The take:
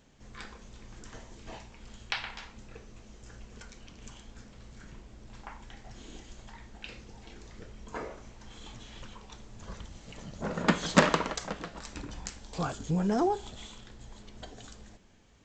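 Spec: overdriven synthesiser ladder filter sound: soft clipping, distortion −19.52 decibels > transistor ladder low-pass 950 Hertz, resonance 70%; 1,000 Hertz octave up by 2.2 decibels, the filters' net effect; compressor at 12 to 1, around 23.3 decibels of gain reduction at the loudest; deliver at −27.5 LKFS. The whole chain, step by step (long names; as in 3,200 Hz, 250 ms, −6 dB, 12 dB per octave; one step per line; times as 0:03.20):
parametric band 1,000 Hz +5.5 dB
downward compressor 12 to 1, threshold −38 dBFS
soft clipping −31.5 dBFS
transistor ladder low-pass 950 Hz, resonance 70%
level +27 dB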